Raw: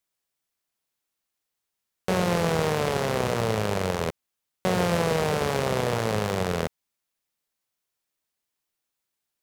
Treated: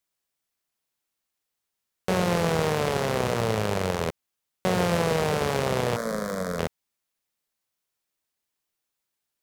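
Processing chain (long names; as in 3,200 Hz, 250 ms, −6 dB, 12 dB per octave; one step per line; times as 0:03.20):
0:05.96–0:06.59: phaser with its sweep stopped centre 550 Hz, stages 8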